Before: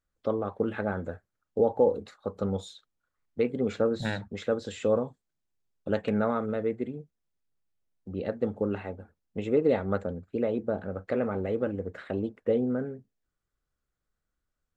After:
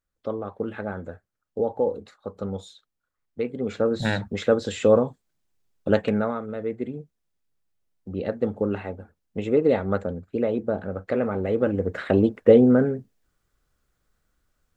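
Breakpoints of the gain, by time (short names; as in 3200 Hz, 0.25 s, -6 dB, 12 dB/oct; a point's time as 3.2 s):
3.56 s -1 dB
4.19 s +8 dB
5.95 s +8 dB
6.45 s -3 dB
6.93 s +4 dB
11.38 s +4 dB
12.09 s +12 dB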